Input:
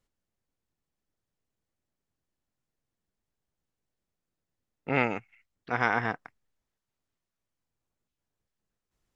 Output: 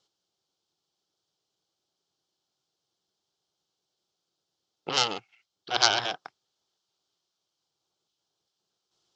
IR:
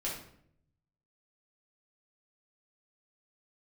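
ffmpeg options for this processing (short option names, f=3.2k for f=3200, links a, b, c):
-filter_complex "[0:a]asettb=1/sr,asplit=3[a][b][c];[a]atrim=end=4.894[d];[b]atrim=start=4.89:end=6.17,asetpts=PTS-STARTPTS,afade=t=in:d=0.004:c=qsin,afade=t=out:st=1.276:d=0.004:c=qsin,aeval=exprs='0.398*(cos(1*acos(clip(val(0)/0.398,-1,1)))-cos(1*PI/2))+0.0282*(cos(3*acos(clip(val(0)/0.398,-1,1)))-cos(3*PI/2))+0.141*(cos(4*acos(clip(val(0)/0.398,-1,1)))-cos(4*PI/2))':c=same[e];[c]atrim=start=6.166[f];[d][e]acrossfade=d=0.004:c1=hsin:c2=qsin[g];[g][f]acrossfade=d=0.004:c1=qsin:c2=hsin,aexciter=amount=6.4:drive=5:freq=3.8k,highpass=170,equalizer=f=240:t=q:w=4:g=-10,equalizer=f=370:t=q:w=4:g=6,equalizer=f=790:t=q:w=4:g=6,equalizer=f=1.3k:t=q:w=4:g=4,equalizer=f=1.9k:t=q:w=4:g=-8,equalizer=f=3.1k:t=q:w=4:g=8,lowpass=f=5.2k:w=0.5412,lowpass=f=5.2k:w=1.3066,volume=2.5dB"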